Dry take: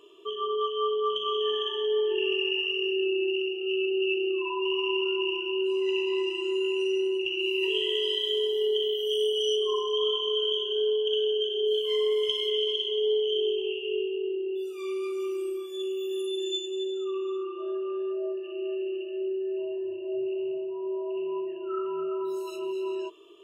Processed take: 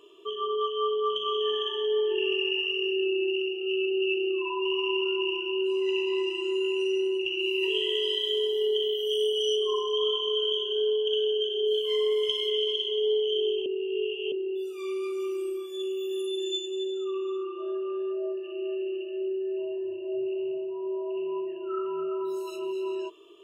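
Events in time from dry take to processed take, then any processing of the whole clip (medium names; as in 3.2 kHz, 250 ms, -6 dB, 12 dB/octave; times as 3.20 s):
13.66–14.32 s: reverse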